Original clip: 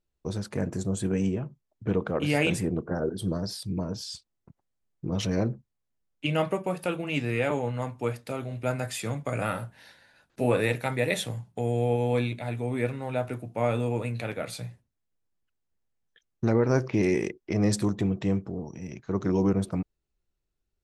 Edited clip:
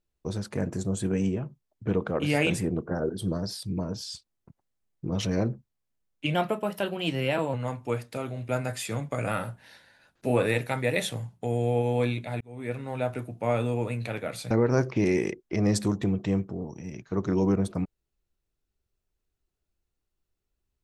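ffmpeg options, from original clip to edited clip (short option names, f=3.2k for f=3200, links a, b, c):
-filter_complex "[0:a]asplit=5[a][b][c][d][e];[a]atrim=end=6.344[f];[b]atrim=start=6.34:end=7.68,asetpts=PTS-STARTPTS,asetrate=49392,aresample=44100,atrim=end_sample=52762,asetpts=PTS-STARTPTS[g];[c]atrim=start=7.676:end=12.55,asetpts=PTS-STARTPTS,afade=t=out:st=4.87:d=0.004:c=hsin[h];[d]atrim=start=12.55:end=14.652,asetpts=PTS-STARTPTS,afade=t=in:d=0.5[i];[e]atrim=start=16.478[j];[f][g]acrossfade=d=0.004:c1=hsin:c2=hsin[k];[h][i]concat=n=2:v=0:a=1[l];[k][l]acrossfade=d=0.004:c1=hsin:c2=hsin[m];[m][j]acrossfade=d=0.004:c1=hsin:c2=hsin"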